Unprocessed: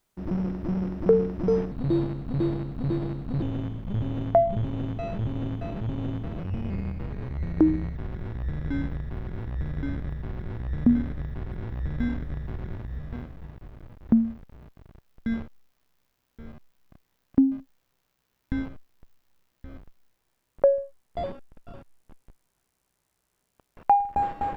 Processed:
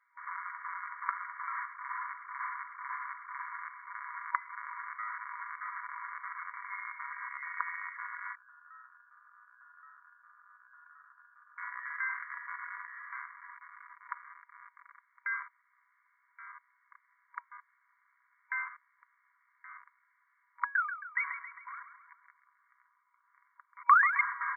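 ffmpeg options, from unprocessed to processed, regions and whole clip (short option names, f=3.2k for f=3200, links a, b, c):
-filter_complex "[0:a]asettb=1/sr,asplit=3[a][b][c];[a]atrim=end=8.354[d];[b]atrim=start=8.35:end=11.58,asetpts=PTS-STARTPTS,afade=t=in:d=0.004:c=qsin,afade=t=out:st=3.226:d=0.004:c=qsin,aderivative,lowpass=f=2.9k:t=q:w=0.5098,lowpass=f=2.9k:t=q:w=0.6013,lowpass=f=2.9k:t=q:w=0.9,lowpass=f=2.9k:t=q:w=2.563,afreqshift=-3400,asuperstop=centerf=2100:order=4:qfactor=1.4[e];[c]atrim=start=11.576[f];[d][e]acrossfade=d=0.004:c1=hsin:c2=qsin[g];[g][f]acrossfade=d=0.004:c1=qsin:c2=hsin,asettb=1/sr,asplit=3[h][i][j];[h]atrim=end=20.754[k];[i]atrim=start=20.75:end=24.21,asetpts=PTS-STARTPTS,afade=t=in:d=0.004:c=qsin,afade=t=out:st=3.456:d=0.004:c=qsin,acrusher=samples=20:mix=1:aa=0.000001:lfo=1:lforange=12:lforate=1.4,acompressor=threshold=-26dB:ratio=3:attack=3.2:release=140:knee=1:detection=peak,aecho=1:1:135|270|405|540|675|810:0.316|0.161|0.0823|0.0419|0.0214|0.0109,atrim=end_sample=152586[l];[j]atrim=start=24.206[m];[k][l]acrossfade=d=0.004:c1=hsin:c2=qsin[n];[n][m]acrossfade=d=0.004:c1=qsin:c2=hsin,afftfilt=real='re*between(b*sr/4096,960,2300)':imag='im*between(b*sr/4096,960,2300)':win_size=4096:overlap=0.75,aecho=1:1:4.2:0.34,volume=11.5dB"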